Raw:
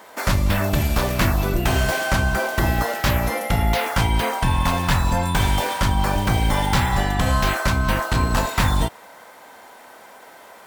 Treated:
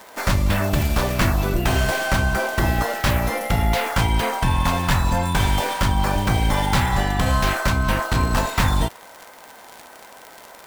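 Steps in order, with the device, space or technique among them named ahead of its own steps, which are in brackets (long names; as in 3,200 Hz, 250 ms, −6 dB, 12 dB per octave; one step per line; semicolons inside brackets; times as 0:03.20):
record under a worn stylus (stylus tracing distortion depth 0.062 ms; surface crackle 75 per second −26 dBFS; white noise bed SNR 36 dB)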